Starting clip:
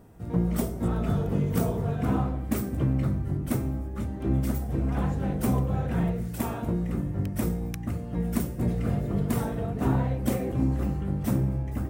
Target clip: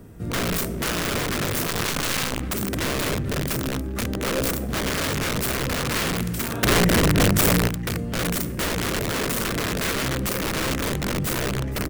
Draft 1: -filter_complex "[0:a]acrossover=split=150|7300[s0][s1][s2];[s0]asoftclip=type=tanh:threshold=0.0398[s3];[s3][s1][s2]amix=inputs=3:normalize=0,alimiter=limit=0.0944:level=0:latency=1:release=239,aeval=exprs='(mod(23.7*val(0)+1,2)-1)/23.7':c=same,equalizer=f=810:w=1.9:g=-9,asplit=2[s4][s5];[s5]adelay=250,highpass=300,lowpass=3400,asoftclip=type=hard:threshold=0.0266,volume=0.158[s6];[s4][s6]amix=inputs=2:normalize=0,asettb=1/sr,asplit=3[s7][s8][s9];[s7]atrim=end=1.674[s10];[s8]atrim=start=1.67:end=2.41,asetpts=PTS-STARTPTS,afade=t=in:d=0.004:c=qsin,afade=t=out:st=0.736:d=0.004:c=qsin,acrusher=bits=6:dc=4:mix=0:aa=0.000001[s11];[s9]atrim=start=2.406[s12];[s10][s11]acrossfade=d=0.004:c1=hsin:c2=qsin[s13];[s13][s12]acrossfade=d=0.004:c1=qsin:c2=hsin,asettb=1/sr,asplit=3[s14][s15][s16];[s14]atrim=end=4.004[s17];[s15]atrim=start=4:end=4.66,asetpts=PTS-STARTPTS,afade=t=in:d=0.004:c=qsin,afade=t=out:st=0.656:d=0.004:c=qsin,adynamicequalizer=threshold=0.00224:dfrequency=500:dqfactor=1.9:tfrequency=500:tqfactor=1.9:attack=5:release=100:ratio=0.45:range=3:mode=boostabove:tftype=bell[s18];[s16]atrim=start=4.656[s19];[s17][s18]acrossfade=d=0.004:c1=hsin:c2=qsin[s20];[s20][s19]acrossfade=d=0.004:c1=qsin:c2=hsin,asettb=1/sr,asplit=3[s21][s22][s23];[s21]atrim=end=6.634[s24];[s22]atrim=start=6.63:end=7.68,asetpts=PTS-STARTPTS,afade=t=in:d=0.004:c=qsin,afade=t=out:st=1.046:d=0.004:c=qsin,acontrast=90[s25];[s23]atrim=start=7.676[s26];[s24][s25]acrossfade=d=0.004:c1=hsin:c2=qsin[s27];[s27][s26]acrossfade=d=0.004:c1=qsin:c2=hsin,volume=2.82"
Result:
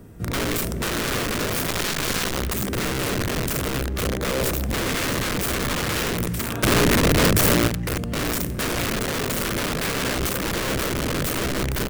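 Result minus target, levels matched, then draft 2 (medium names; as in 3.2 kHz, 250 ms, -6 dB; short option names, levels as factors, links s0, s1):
saturation: distortion -8 dB
-filter_complex "[0:a]acrossover=split=150|7300[s0][s1][s2];[s0]asoftclip=type=tanh:threshold=0.0119[s3];[s3][s1][s2]amix=inputs=3:normalize=0,alimiter=limit=0.0944:level=0:latency=1:release=239,aeval=exprs='(mod(23.7*val(0)+1,2)-1)/23.7':c=same,equalizer=f=810:w=1.9:g=-9,asplit=2[s4][s5];[s5]adelay=250,highpass=300,lowpass=3400,asoftclip=type=hard:threshold=0.0266,volume=0.158[s6];[s4][s6]amix=inputs=2:normalize=0,asettb=1/sr,asplit=3[s7][s8][s9];[s7]atrim=end=1.674[s10];[s8]atrim=start=1.67:end=2.41,asetpts=PTS-STARTPTS,afade=t=in:d=0.004:c=qsin,afade=t=out:st=0.736:d=0.004:c=qsin,acrusher=bits=6:dc=4:mix=0:aa=0.000001[s11];[s9]atrim=start=2.406[s12];[s10][s11]acrossfade=d=0.004:c1=hsin:c2=qsin[s13];[s13][s12]acrossfade=d=0.004:c1=qsin:c2=hsin,asettb=1/sr,asplit=3[s14][s15][s16];[s14]atrim=end=4.004[s17];[s15]atrim=start=4:end=4.66,asetpts=PTS-STARTPTS,afade=t=in:d=0.004:c=qsin,afade=t=out:st=0.656:d=0.004:c=qsin,adynamicequalizer=threshold=0.00224:dfrequency=500:dqfactor=1.9:tfrequency=500:tqfactor=1.9:attack=5:release=100:ratio=0.45:range=3:mode=boostabove:tftype=bell[s18];[s16]atrim=start=4.656[s19];[s17][s18]acrossfade=d=0.004:c1=hsin:c2=qsin[s20];[s20][s19]acrossfade=d=0.004:c1=qsin:c2=hsin,asettb=1/sr,asplit=3[s21][s22][s23];[s21]atrim=end=6.634[s24];[s22]atrim=start=6.63:end=7.68,asetpts=PTS-STARTPTS,afade=t=in:d=0.004:c=qsin,afade=t=out:st=1.046:d=0.004:c=qsin,acontrast=90[s25];[s23]atrim=start=7.676[s26];[s24][s25]acrossfade=d=0.004:c1=hsin:c2=qsin[s27];[s27][s26]acrossfade=d=0.004:c1=qsin:c2=hsin,volume=2.82"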